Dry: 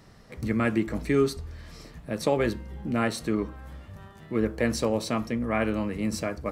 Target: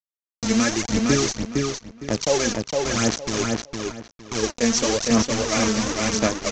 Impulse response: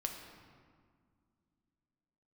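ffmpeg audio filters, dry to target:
-filter_complex "[0:a]highpass=f=50:p=1,aresample=16000,acrusher=bits=4:mix=0:aa=0.000001,aresample=44100,aphaser=in_gain=1:out_gain=1:delay=4.5:decay=0.63:speed=0.96:type=sinusoidal,lowpass=f=6200:t=q:w=4.1,asplit=2[s0][s1];[s1]adelay=460,lowpass=f=4800:p=1,volume=0.708,asplit=2[s2][s3];[s3]adelay=460,lowpass=f=4800:p=1,volume=0.24,asplit=2[s4][s5];[s5]adelay=460,lowpass=f=4800:p=1,volume=0.24[s6];[s0][s2][s4][s6]amix=inputs=4:normalize=0"

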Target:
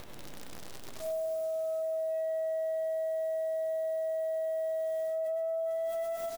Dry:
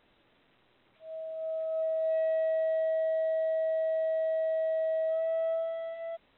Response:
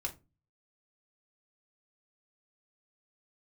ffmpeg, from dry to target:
-filter_complex "[0:a]equalizer=f=610:w=0.3:g=13,bandreject=f=50:t=h:w=6,bandreject=f=100:t=h:w=6,bandreject=f=150:t=h:w=6,bandreject=f=200:t=h:w=6,bandreject=f=250:t=h:w=6,asplit=2[s0][s1];[s1]aecho=0:1:135|208:0.631|0.141[s2];[s0][s2]amix=inputs=2:normalize=0,acrusher=bits=9:dc=4:mix=0:aa=0.000001,acompressor=mode=upward:threshold=0.0112:ratio=2.5,bass=f=250:g=10,treble=f=4000:g=9,asplit=2[s3][s4];[s4]aecho=0:1:98|196|294|392|490|588:0.473|0.232|0.114|0.0557|0.0273|0.0134[s5];[s3][s5]amix=inputs=2:normalize=0,alimiter=level_in=1.5:limit=0.0631:level=0:latency=1,volume=0.668,volume=0.841"

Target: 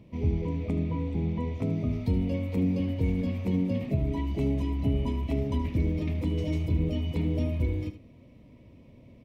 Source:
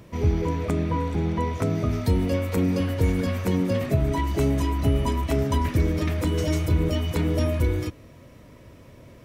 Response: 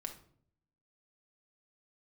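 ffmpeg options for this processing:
-af "firequalizer=gain_entry='entry(120,0);entry(240,5);entry(340,-2);entry(930,-6);entry(1500,-19);entry(2200,-2);entry(6900,-15)':delay=0.05:min_phase=1,aecho=1:1:75:0.251,volume=0.531"

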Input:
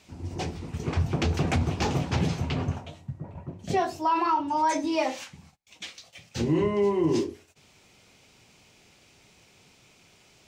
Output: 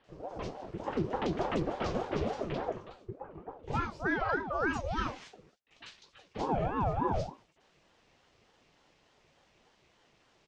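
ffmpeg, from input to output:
-filter_complex "[0:a]lowpass=4300,acrossover=split=3000[s0][s1];[s1]adelay=40[s2];[s0][s2]amix=inputs=2:normalize=0,aeval=exprs='val(0)*sin(2*PI*460*n/s+460*0.5/3.4*sin(2*PI*3.4*n/s))':c=same,volume=0.631"

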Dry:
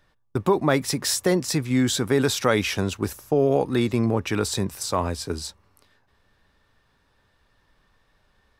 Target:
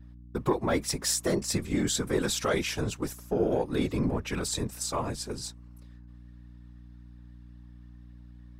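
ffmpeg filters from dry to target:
-af "asoftclip=type=tanh:threshold=0.376,afftfilt=real='hypot(re,im)*cos(2*PI*random(0))':imag='hypot(re,im)*sin(2*PI*random(1))':win_size=512:overlap=0.75,aeval=exprs='val(0)+0.00447*(sin(2*PI*60*n/s)+sin(2*PI*2*60*n/s)/2+sin(2*PI*3*60*n/s)/3+sin(2*PI*4*60*n/s)/4+sin(2*PI*5*60*n/s)/5)':c=same,adynamicequalizer=threshold=0.00398:dfrequency=7600:dqfactor=1.6:tfrequency=7600:tqfactor=1.6:attack=5:release=100:ratio=0.375:range=2.5:mode=boostabove:tftype=bell"

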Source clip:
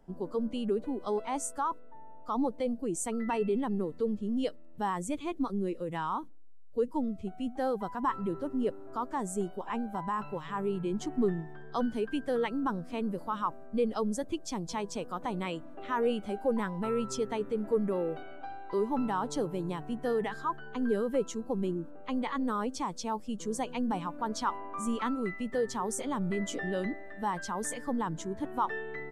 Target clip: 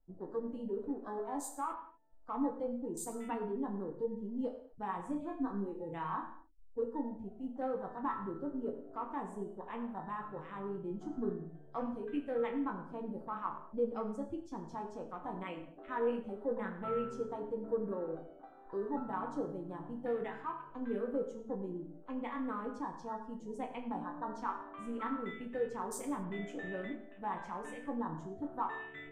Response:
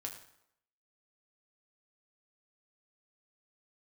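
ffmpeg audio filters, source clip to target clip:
-filter_complex "[0:a]afwtdn=0.00794,asettb=1/sr,asplit=3[s0][s1][s2];[s0]atrim=end=4.974[s3];[s1]atrim=start=4.97:end=6.82,asetpts=PTS-STARTPTS,afade=t=in:d=0.004:c=qsin,afade=t=out:st=1.846:d=0.004:c=qsin,asplit=2[s4][s5];[s5]adelay=30,volume=0.562[s6];[s4][s6]amix=inputs=2:normalize=0,atrim=end_sample=81585[s7];[s2]atrim=start=6.816[s8];[s3][s7]acrossfade=d=0.004:c1=hsin:c2=qsin[s9];[s9][s8]acrossfade=d=0.004:c1=qsin:c2=hsin[s10];[1:a]atrim=start_sample=2205,afade=t=out:st=0.31:d=0.01,atrim=end_sample=14112[s11];[s10][s11]afir=irnorm=-1:irlink=0,volume=0.596"

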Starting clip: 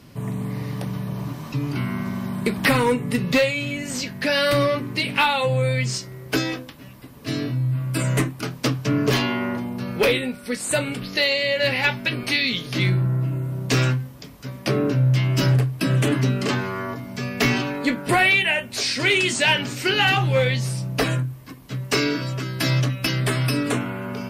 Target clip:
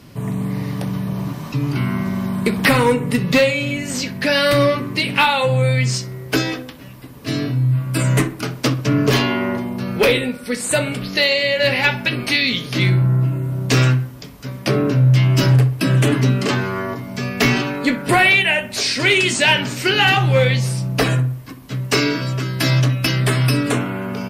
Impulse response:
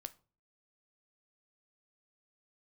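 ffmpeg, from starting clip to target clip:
-filter_complex "[0:a]asplit=2[s0][s1];[s1]adelay=63,lowpass=f=2000:p=1,volume=0.224,asplit=2[s2][s3];[s3]adelay=63,lowpass=f=2000:p=1,volume=0.52,asplit=2[s4][s5];[s5]adelay=63,lowpass=f=2000:p=1,volume=0.52,asplit=2[s6][s7];[s7]adelay=63,lowpass=f=2000:p=1,volume=0.52,asplit=2[s8][s9];[s9]adelay=63,lowpass=f=2000:p=1,volume=0.52[s10];[s0][s2][s4][s6][s8][s10]amix=inputs=6:normalize=0,volume=1.58"

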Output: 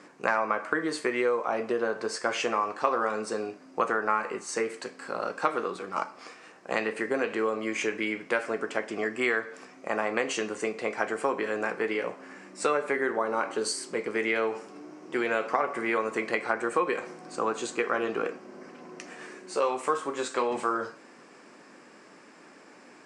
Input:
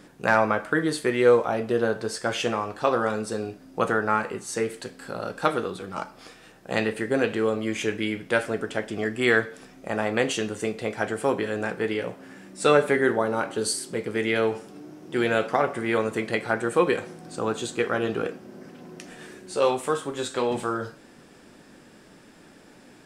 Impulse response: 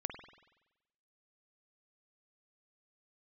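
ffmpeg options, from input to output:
-af "acompressor=threshold=0.0708:ratio=6,highpass=280,equalizer=f=1100:t=q:w=4:g=7,equalizer=f=2200:t=q:w=4:g=4,equalizer=f=3500:t=q:w=4:g=-8,lowpass=f=8200:w=0.5412,lowpass=f=8200:w=1.3066"

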